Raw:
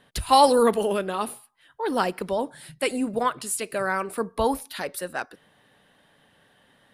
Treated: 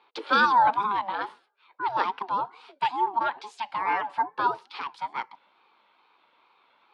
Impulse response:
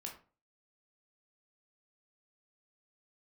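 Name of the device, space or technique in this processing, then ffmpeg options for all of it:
voice changer toy: -filter_complex "[0:a]aeval=exprs='val(0)*sin(2*PI*510*n/s+510*0.25/2.3*sin(2*PI*2.3*n/s))':channel_layout=same,highpass=450,equalizer=frequency=650:width_type=q:width=4:gain=-6,equalizer=frequency=920:width_type=q:width=4:gain=9,equalizer=frequency=1900:width_type=q:width=4:gain=-4,lowpass=frequency=4300:width=0.5412,lowpass=frequency=4300:width=1.3066,asettb=1/sr,asplit=3[link_01][link_02][link_03];[link_01]atrim=end=3.864[link_04];[link_02]atrim=start=3.86:end=4.35,asetpts=PTS-STARTPTS,afade=type=in:duration=0.004:curve=qsin,afade=type=out:start_time=0.486:duration=0.004:curve=qsin,aecho=1:1:6.9:0.66,atrim=end_sample=21609[link_05];[link_03]atrim=start=4.346[link_06];[link_04][link_05]acrossfade=duration=0.004:curve1=hsin:curve2=qsin[link_07];[link_07][link_06]acrossfade=duration=0.004:curve1=qsin:curve2=hsin"

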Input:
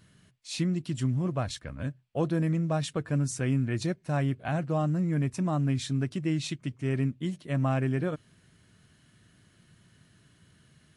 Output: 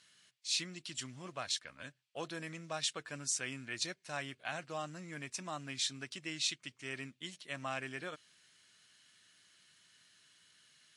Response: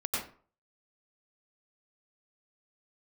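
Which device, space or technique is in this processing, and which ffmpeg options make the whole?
piezo pickup straight into a mixer: -af "lowpass=5300,aderivative,volume=10dB"

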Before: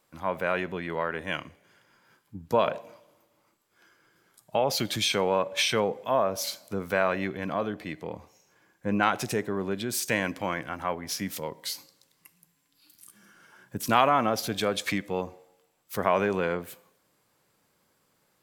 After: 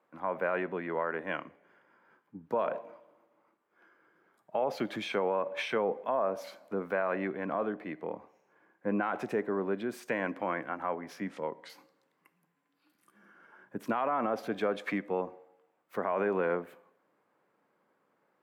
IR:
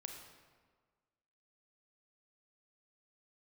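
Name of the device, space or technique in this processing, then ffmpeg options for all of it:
DJ mixer with the lows and highs turned down: -filter_complex "[0:a]asplit=3[link_01][link_02][link_03];[link_01]afade=type=out:start_time=11.19:duration=0.02[link_04];[link_02]lowpass=frequency=9100:width=0.5412,lowpass=frequency=9100:width=1.3066,afade=type=in:start_time=11.19:duration=0.02,afade=type=out:start_time=11.68:duration=0.02[link_05];[link_03]afade=type=in:start_time=11.68:duration=0.02[link_06];[link_04][link_05][link_06]amix=inputs=3:normalize=0,acrossover=split=190 2100:gain=0.0631 1 0.0708[link_07][link_08][link_09];[link_07][link_08][link_09]amix=inputs=3:normalize=0,alimiter=limit=-20dB:level=0:latency=1:release=56"

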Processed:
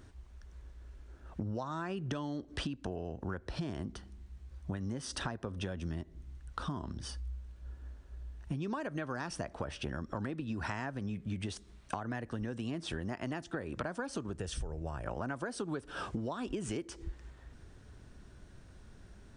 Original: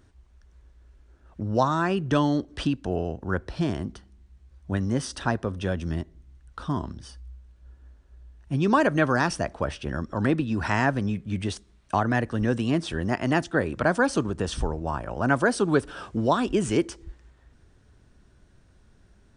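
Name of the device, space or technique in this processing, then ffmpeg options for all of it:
serial compression, leveller first: -filter_complex "[0:a]asettb=1/sr,asplit=3[link_01][link_02][link_03];[link_01]atrim=end=14.374[link_04];[link_02]atrim=start=14.37:end=15.06,asetpts=PTS-STARTPTS,afade=type=in:duration=0.004:curve=qsin,afade=type=out:start_time=0.686:duration=0.004:curve=qsin,equalizer=frequency=250:width_type=o:width=1:gain=-9,equalizer=frequency=1000:width_type=o:width=1:gain=-11,equalizer=frequency=4000:width_type=o:width=1:gain=-5[link_05];[link_03]atrim=start=15.056[link_06];[link_04][link_05]acrossfade=duration=0.004:curve1=hsin:curve2=qsin[link_07];[link_07][link_06]acrossfade=duration=0.004:curve1=qsin:curve2=hsin,acompressor=threshold=-27dB:ratio=2.5,acompressor=threshold=-38dB:ratio=6,volume=3dB"

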